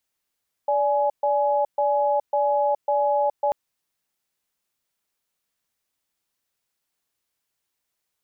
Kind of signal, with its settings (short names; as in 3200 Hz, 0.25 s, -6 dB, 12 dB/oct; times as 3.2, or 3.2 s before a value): cadence 581 Hz, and 839 Hz, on 0.42 s, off 0.13 s, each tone -21 dBFS 2.84 s